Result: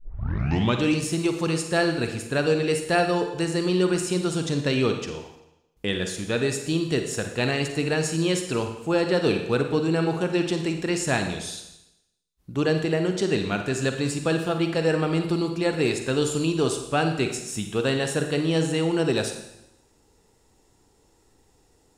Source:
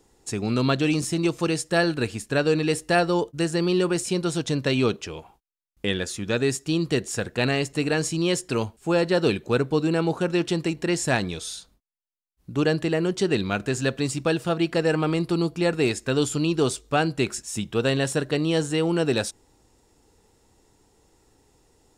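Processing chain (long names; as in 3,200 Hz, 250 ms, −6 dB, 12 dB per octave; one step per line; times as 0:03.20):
turntable start at the beginning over 0.80 s
four-comb reverb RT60 0.88 s, DRR 5.5 dB
level −1.5 dB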